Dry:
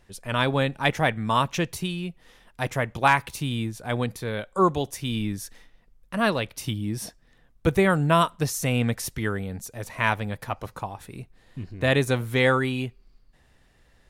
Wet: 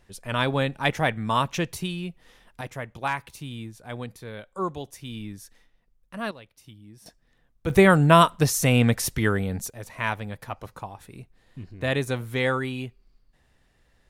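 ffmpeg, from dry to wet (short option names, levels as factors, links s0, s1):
-af "asetnsamples=n=441:p=0,asendcmd='2.61 volume volume -8.5dB;6.31 volume volume -19dB;7.06 volume volume -6dB;7.7 volume volume 4.5dB;9.7 volume volume -4dB',volume=0.891"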